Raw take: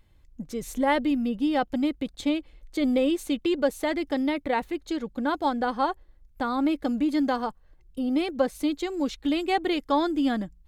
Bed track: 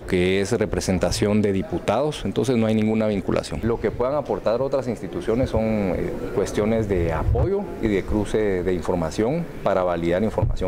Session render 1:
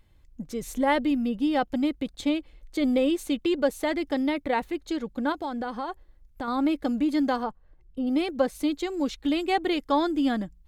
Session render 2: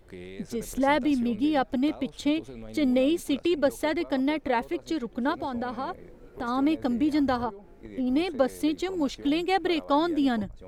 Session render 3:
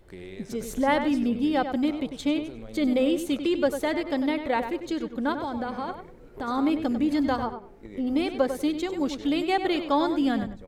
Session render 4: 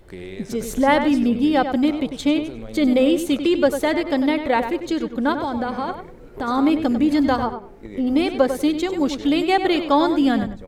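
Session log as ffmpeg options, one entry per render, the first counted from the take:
-filter_complex "[0:a]asettb=1/sr,asplit=3[a][b][c];[a]atrim=end=5.324[d];[b]atrim=start=5.32:end=6.48,asetpts=PTS-STARTPTS,afade=t=in:d=0.004:c=qsin,afade=t=out:st=1.156:d=0.004:c=qsin,acompressor=threshold=-28dB:ratio=5:attack=3.2:release=140:knee=1:detection=peak[e];[c]atrim=start=6.476[f];[d][e]acrossfade=d=0.004:c1=hsin:c2=qsin[g];[g][f]acrossfade=d=0.004:c1=qsin:c2=hsin,asettb=1/sr,asplit=3[h][i][j];[h]atrim=end=7.434[k];[i]atrim=start=7.43:end=8.07,asetpts=PTS-STARTPTS,afade=t=in:d=0.004:c=qsin,afade=t=out:st=0.636:d=0.004:c=qsin,lowpass=f=1.8k:p=1[l];[j]atrim=start=8.066[m];[k][l]acrossfade=d=0.004:c1=hsin:c2=qsin[n];[n][m]acrossfade=d=0.004:c1=qsin:c2=hsin"
-filter_complex "[1:a]volume=-22.5dB[a];[0:a][a]amix=inputs=2:normalize=0"
-filter_complex "[0:a]asplit=2[a][b];[b]adelay=97,lowpass=f=4k:p=1,volume=-8.5dB,asplit=2[c][d];[d]adelay=97,lowpass=f=4k:p=1,volume=0.2,asplit=2[e][f];[f]adelay=97,lowpass=f=4k:p=1,volume=0.2[g];[a][c][e][g]amix=inputs=4:normalize=0"
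-af "volume=6.5dB"

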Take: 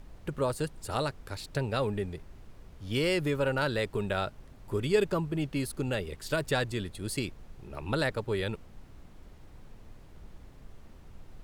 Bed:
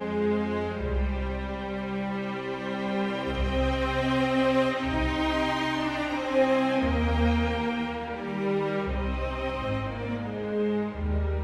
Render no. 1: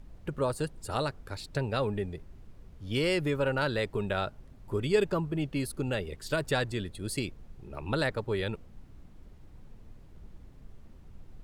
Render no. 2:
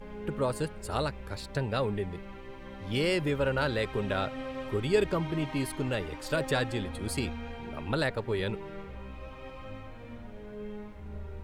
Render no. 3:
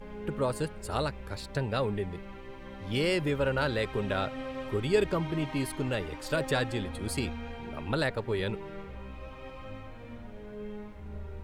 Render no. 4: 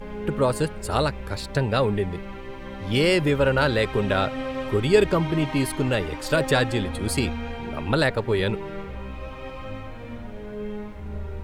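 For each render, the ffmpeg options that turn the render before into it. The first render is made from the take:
-af "afftdn=nr=6:nf=-52"
-filter_complex "[1:a]volume=-14.5dB[a];[0:a][a]amix=inputs=2:normalize=0"
-af anull
-af "volume=8dB"

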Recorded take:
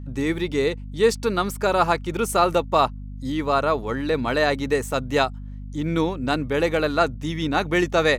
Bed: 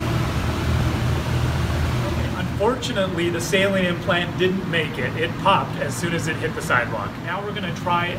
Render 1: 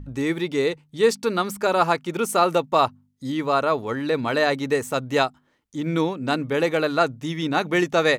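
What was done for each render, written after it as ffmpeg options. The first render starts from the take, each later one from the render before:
-af "bandreject=f=50:t=h:w=4,bandreject=f=100:t=h:w=4,bandreject=f=150:t=h:w=4,bandreject=f=200:t=h:w=4,bandreject=f=250:t=h:w=4"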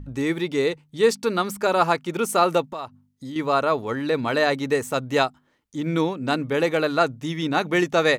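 -filter_complex "[0:a]asettb=1/sr,asplit=3[a][b][c];[a]atrim=end=2.694[d];[b]atrim=start=2.69:end=3.36,asetpts=PTS-STARTPTS,afade=t=in:d=0.004:c=qsin,afade=t=out:st=0.666:d=0.004:c=qsin,acompressor=threshold=-33dB:ratio=3:attack=3.2:release=140:knee=1:detection=peak[e];[c]atrim=start=3.356[f];[d][e]acrossfade=d=0.004:c1=hsin:c2=qsin[g];[g][f]acrossfade=d=0.004:c1=qsin:c2=hsin"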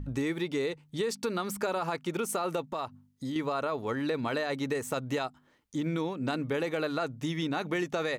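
-af "alimiter=limit=-14dB:level=0:latency=1:release=25,acompressor=threshold=-29dB:ratio=4"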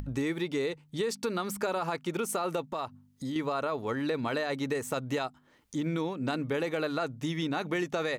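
-af "acompressor=mode=upward:threshold=-40dB:ratio=2.5"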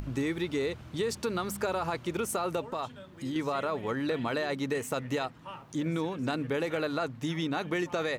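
-filter_complex "[1:a]volume=-27dB[a];[0:a][a]amix=inputs=2:normalize=0"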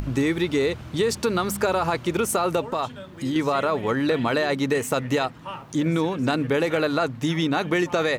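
-af "volume=8.5dB"

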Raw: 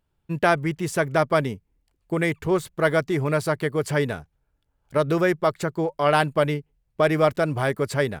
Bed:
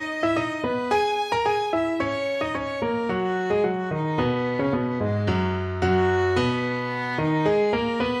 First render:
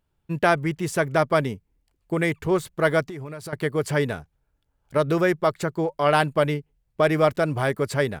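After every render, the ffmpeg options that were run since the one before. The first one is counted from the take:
-filter_complex "[0:a]asettb=1/sr,asplit=3[a][b][c];[a]atrim=end=3.024[d];[b]atrim=start=3.02:end=3.53,asetpts=PTS-STARTPTS,afade=t=in:d=0.004:c=qsin,afade=t=out:st=0.506:d=0.004:c=qsin,acompressor=threshold=-32dB:ratio=8:attack=3.2:release=140:knee=1:detection=peak[e];[c]atrim=start=3.526[f];[d][e]acrossfade=d=0.004:c1=hsin:c2=qsin[g];[g][f]acrossfade=d=0.004:c1=qsin:c2=hsin"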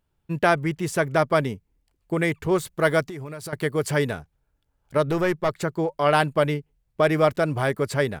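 -filter_complex "[0:a]asettb=1/sr,asplit=3[a][b][c];[a]atrim=end=2.514[d];[b]atrim=start=2.51:end=4.11,asetpts=PTS-STARTPTS,afade=t=in:d=0.004:c=qsin,afade=t=out:st=1.596:d=0.004:c=qsin,highshelf=f=4.7k:g=4.5[e];[c]atrim=start=4.106[f];[d][e]acrossfade=d=0.004:c1=hsin:c2=qsin[g];[g][f]acrossfade=d=0.004:c1=qsin:c2=hsin,asettb=1/sr,asplit=3[h][i][j];[h]atrim=end=5.094[k];[i]atrim=start=5.09:end=5.49,asetpts=PTS-STARTPTS,afade=t=in:d=0.004:c=qsin,afade=t=out:st=0.396:d=0.004:c=qsin,aeval=exprs='(tanh(4.47*val(0)+0.35)-tanh(0.35))/4.47':c=same[l];[j]atrim=start=5.486[m];[k][l]acrossfade=d=0.004:c1=hsin:c2=qsin[n];[n][m]acrossfade=d=0.004:c1=qsin:c2=hsin"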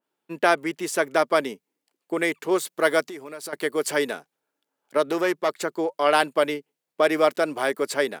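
-af "highpass=f=260:w=0.5412,highpass=f=260:w=1.3066,adynamicequalizer=threshold=0.0141:dfrequency=2600:dqfactor=0.7:tfrequency=2600:tqfactor=0.7:attack=5:release=100:ratio=0.375:range=2:mode=boostabove:tftype=highshelf"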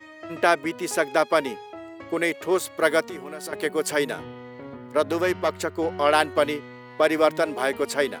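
-filter_complex "[1:a]volume=-16dB[a];[0:a][a]amix=inputs=2:normalize=0"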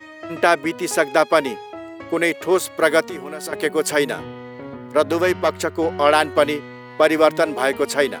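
-af "volume=5dB,alimiter=limit=-2dB:level=0:latency=1"

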